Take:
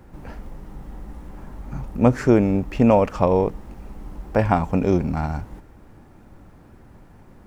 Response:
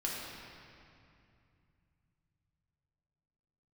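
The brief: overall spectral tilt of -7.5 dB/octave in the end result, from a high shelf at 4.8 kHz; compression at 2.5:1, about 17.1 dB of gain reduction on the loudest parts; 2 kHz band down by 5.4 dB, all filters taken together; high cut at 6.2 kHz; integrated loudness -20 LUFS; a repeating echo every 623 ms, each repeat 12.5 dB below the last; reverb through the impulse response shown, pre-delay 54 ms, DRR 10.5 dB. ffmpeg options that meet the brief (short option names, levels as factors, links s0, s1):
-filter_complex "[0:a]lowpass=6200,equalizer=f=2000:t=o:g=-6.5,highshelf=f=4800:g=-6,acompressor=threshold=0.0126:ratio=2.5,aecho=1:1:623|1246|1869:0.237|0.0569|0.0137,asplit=2[s0][s1];[1:a]atrim=start_sample=2205,adelay=54[s2];[s1][s2]afir=irnorm=-1:irlink=0,volume=0.188[s3];[s0][s3]amix=inputs=2:normalize=0,volume=7.5"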